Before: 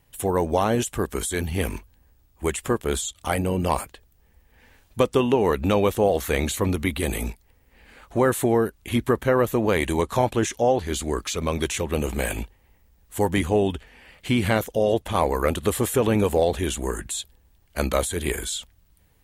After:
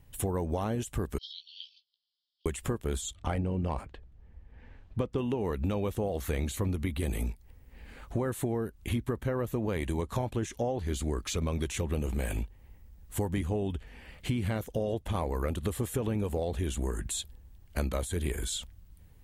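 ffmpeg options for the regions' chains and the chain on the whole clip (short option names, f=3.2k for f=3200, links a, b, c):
-filter_complex "[0:a]asettb=1/sr,asplit=3[a][b][c];[a]atrim=end=1.184[d];[b]atrim=start=1.18:end=2.46,asetpts=PTS-STARTPTS,afade=t=in:d=0.004:c=qsin,afade=t=out:st=1.276:d=0.004:c=qsin,asuperpass=centerf=4000:order=12:qfactor=1.8,asplit=2[e][f];[f]adelay=17,volume=-6dB[g];[e][g]amix=inputs=2:normalize=0,atrim=end_sample=56448[h];[c]atrim=start=2.456[i];[d][h]acrossfade=d=0.004:c1=hsin:c2=qsin[j];[j][i]acrossfade=d=0.004:c1=qsin:c2=hsin,asettb=1/sr,asplit=3[k][l][m];[k]atrim=end=3.154[n];[l]atrim=start=3.15:end=5.18,asetpts=PTS-STARTPTS,afade=t=in:d=0.004:c=qsin,afade=t=out:st=2.026:d=0.004:c=qsin,adynamicsmooth=sensitivity=7:basefreq=4.6k,highshelf=f=4.6k:g=-9[o];[m]atrim=start=5.176[p];[n][o]acrossfade=d=0.004:c1=hsin:c2=qsin[q];[q][p]acrossfade=d=0.004:c1=qsin:c2=hsin,lowshelf=f=250:g=11,acompressor=threshold=-25dB:ratio=6,volume=-3.5dB"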